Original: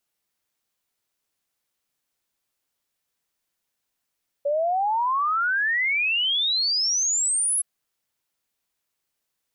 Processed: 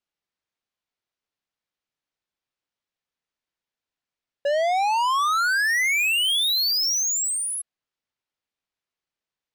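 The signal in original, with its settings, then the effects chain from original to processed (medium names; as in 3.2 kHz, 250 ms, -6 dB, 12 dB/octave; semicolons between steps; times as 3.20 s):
log sweep 560 Hz -> 11 kHz 3.17 s -20 dBFS
low-pass 4.7 kHz 12 dB/octave; waveshaping leveller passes 3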